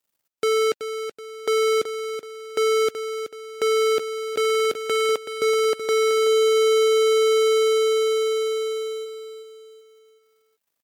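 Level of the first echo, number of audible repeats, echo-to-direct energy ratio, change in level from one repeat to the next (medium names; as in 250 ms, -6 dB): -9.5 dB, 4, -8.5 dB, -8.0 dB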